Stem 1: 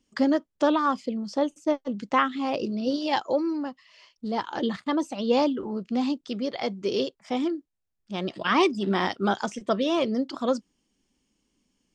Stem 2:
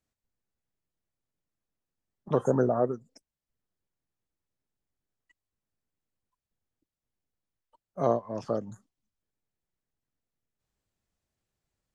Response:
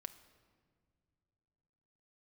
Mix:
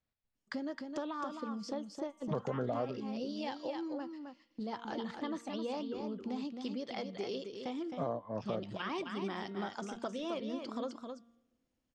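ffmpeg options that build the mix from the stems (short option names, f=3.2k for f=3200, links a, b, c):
-filter_complex "[0:a]agate=range=-14dB:threshold=-47dB:ratio=16:detection=peak,bandreject=f=233.4:t=h:w=4,bandreject=f=466.8:t=h:w=4,bandreject=f=700.2:t=h:w=4,bandreject=f=933.6:t=h:w=4,bandreject=f=1.167k:t=h:w=4,bandreject=f=1.4004k:t=h:w=4,bandreject=f=1.6338k:t=h:w=4,bandreject=f=1.8672k:t=h:w=4,bandreject=f=2.1006k:t=h:w=4,bandreject=f=2.334k:t=h:w=4,bandreject=f=2.5674k:t=h:w=4,bandreject=f=2.8008k:t=h:w=4,bandreject=f=3.0342k:t=h:w=4,bandreject=f=3.2676k:t=h:w=4,bandreject=f=3.501k:t=h:w=4,bandreject=f=3.7344k:t=h:w=4,bandreject=f=3.9678k:t=h:w=4,acompressor=threshold=-33dB:ratio=4,adelay=350,volume=-6.5dB,asplit=3[a][b][c];[b]volume=-9dB[d];[c]volume=-4.5dB[e];[1:a]lowpass=f=4.6k:w=0.5412,lowpass=f=4.6k:w=1.3066,equalizer=f=350:t=o:w=0.36:g=-7,volume=-2.5dB[f];[2:a]atrim=start_sample=2205[g];[d][g]afir=irnorm=-1:irlink=0[h];[e]aecho=0:1:264:1[i];[a][f][h][i]amix=inputs=4:normalize=0,alimiter=level_in=1dB:limit=-24dB:level=0:latency=1:release=262,volume=-1dB"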